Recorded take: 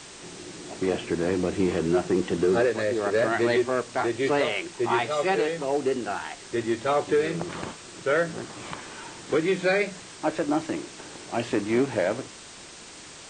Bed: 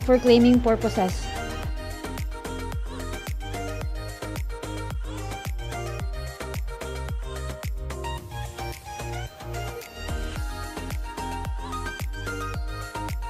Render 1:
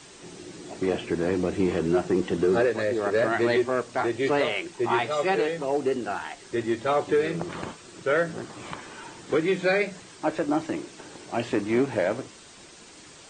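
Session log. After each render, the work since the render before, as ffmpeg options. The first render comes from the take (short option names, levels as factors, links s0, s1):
-af "afftdn=nr=6:nf=-44"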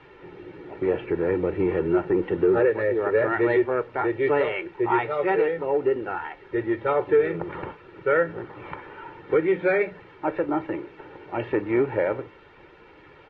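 -af "lowpass=f=2400:w=0.5412,lowpass=f=2400:w=1.3066,aecho=1:1:2.2:0.58"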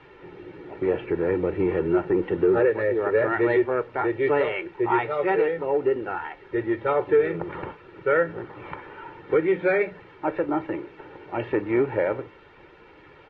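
-af anull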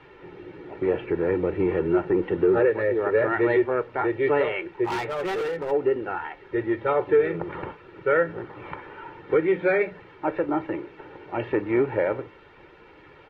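-filter_complex "[0:a]asplit=3[s0][s1][s2];[s0]afade=t=out:st=4.84:d=0.02[s3];[s1]asoftclip=type=hard:threshold=0.0562,afade=t=in:st=4.84:d=0.02,afade=t=out:st=5.7:d=0.02[s4];[s2]afade=t=in:st=5.7:d=0.02[s5];[s3][s4][s5]amix=inputs=3:normalize=0"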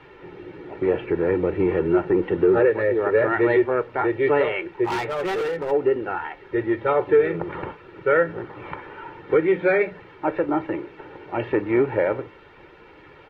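-af "volume=1.33"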